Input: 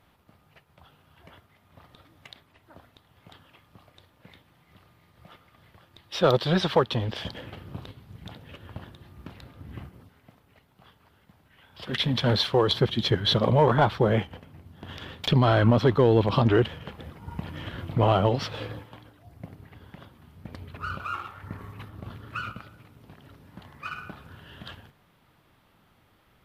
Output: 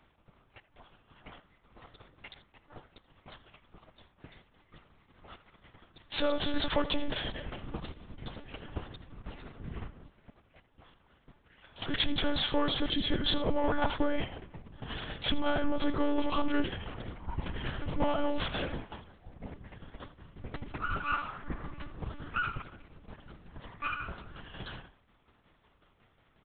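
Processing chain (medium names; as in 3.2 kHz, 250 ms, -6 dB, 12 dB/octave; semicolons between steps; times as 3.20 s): peak limiter -19 dBFS, peak gain reduction 9.5 dB; tremolo saw down 5.5 Hz, depth 55%; speakerphone echo 80 ms, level -12 dB; waveshaping leveller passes 1; monotone LPC vocoder at 8 kHz 290 Hz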